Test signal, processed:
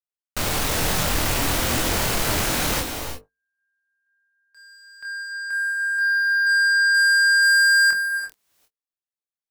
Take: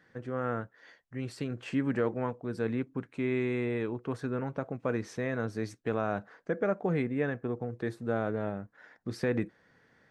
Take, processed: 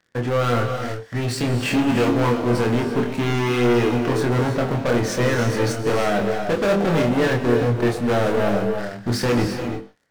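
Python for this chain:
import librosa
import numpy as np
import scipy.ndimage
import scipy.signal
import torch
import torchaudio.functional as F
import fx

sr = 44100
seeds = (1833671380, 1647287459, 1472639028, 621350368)

p1 = fx.hum_notches(x, sr, base_hz=50, count=10)
p2 = fx.leveller(p1, sr, passes=5)
p3 = p2 + fx.room_early_taps(p2, sr, ms=(25, 45), db=(-4.0, -16.0), dry=0)
y = fx.rev_gated(p3, sr, seeds[0], gate_ms=370, shape='rising', drr_db=6.0)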